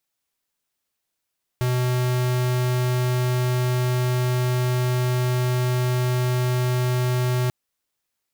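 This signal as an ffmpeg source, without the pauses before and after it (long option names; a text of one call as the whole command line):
ffmpeg -f lavfi -i "aevalsrc='0.0841*(2*lt(mod(125*t,1),0.5)-1)':duration=5.89:sample_rate=44100" out.wav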